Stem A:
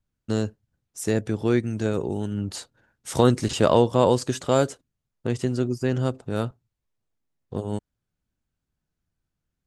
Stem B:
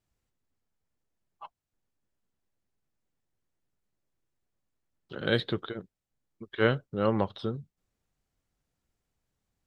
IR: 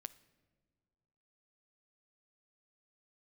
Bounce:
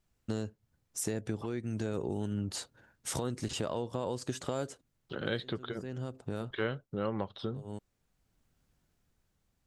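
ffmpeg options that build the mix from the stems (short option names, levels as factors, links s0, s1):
-filter_complex "[0:a]dynaudnorm=f=440:g=5:m=3.16,alimiter=limit=0.251:level=0:latency=1:release=302,volume=0.841[s0];[1:a]volume=1.33,asplit=2[s1][s2];[s2]apad=whole_len=426066[s3];[s0][s3]sidechaincompress=threshold=0.00794:ratio=5:attack=5.3:release=730[s4];[s4][s1]amix=inputs=2:normalize=0,acompressor=threshold=0.0178:ratio=2.5"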